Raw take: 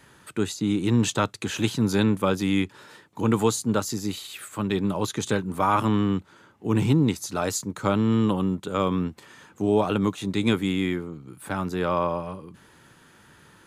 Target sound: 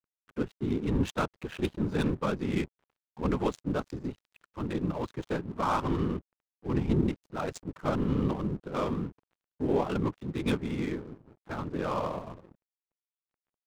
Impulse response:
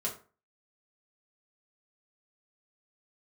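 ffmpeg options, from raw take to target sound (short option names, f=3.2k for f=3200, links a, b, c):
-af "afftfilt=real='hypot(re,im)*cos(2*PI*random(0))':imag='hypot(re,im)*sin(2*PI*random(1))':win_size=512:overlap=0.75,adynamicsmooth=sensitivity=7:basefreq=700,aeval=exprs='sgn(val(0))*max(abs(val(0))-0.00211,0)':c=same"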